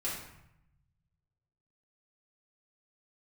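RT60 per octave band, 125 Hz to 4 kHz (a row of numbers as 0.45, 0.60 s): 2.0, 1.2, 0.75, 0.85, 0.80, 0.60 s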